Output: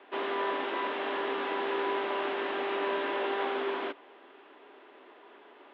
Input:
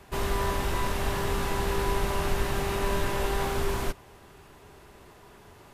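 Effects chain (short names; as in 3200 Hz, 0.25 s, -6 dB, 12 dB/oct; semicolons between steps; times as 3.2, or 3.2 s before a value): Chebyshev band-pass 270–3400 Hz, order 4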